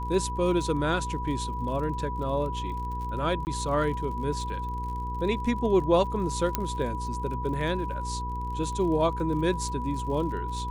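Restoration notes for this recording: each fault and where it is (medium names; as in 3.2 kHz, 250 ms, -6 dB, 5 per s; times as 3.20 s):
crackle 53 per s -37 dBFS
hum 60 Hz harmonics 8 -34 dBFS
whine 980 Hz -33 dBFS
3.45–3.47 s: dropout 19 ms
6.55 s: pop -9 dBFS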